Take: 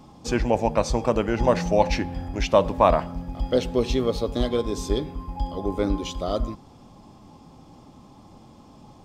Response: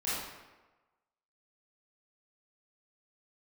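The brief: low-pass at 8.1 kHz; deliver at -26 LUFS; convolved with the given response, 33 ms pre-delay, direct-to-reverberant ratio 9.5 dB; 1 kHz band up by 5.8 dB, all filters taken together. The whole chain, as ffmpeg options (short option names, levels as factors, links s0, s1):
-filter_complex "[0:a]lowpass=8100,equalizer=f=1000:t=o:g=7,asplit=2[s0][s1];[1:a]atrim=start_sample=2205,adelay=33[s2];[s1][s2]afir=irnorm=-1:irlink=0,volume=0.158[s3];[s0][s3]amix=inputs=2:normalize=0,volume=0.596"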